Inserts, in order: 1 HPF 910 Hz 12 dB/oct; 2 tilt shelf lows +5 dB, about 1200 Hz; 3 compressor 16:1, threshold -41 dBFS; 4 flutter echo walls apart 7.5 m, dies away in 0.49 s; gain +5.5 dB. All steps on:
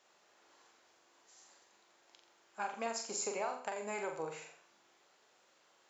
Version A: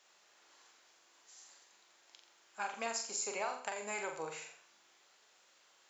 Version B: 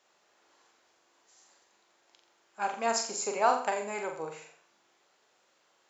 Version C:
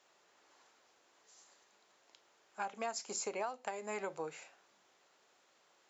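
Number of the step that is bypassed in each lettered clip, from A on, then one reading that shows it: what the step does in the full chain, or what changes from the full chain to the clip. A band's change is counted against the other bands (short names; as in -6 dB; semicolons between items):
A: 2, crest factor change +2.5 dB; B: 3, mean gain reduction 5.5 dB; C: 4, echo-to-direct -4.0 dB to none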